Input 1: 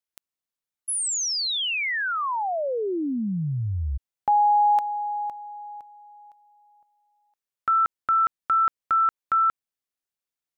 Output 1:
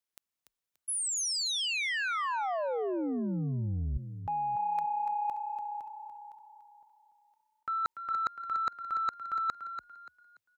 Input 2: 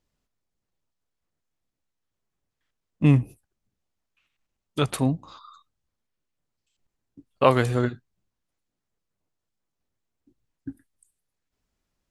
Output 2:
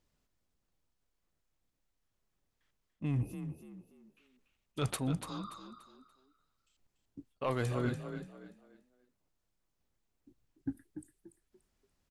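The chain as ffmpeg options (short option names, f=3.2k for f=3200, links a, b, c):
-filter_complex "[0:a]areverse,acompressor=threshold=-31dB:ratio=10:attack=30:release=223:knee=1:detection=peak,areverse,asoftclip=type=tanh:threshold=-22dB,asplit=5[a][b][c][d][e];[b]adelay=289,afreqshift=32,volume=-9dB[f];[c]adelay=578,afreqshift=64,volume=-19.2dB[g];[d]adelay=867,afreqshift=96,volume=-29.3dB[h];[e]adelay=1156,afreqshift=128,volume=-39.5dB[i];[a][f][g][h][i]amix=inputs=5:normalize=0"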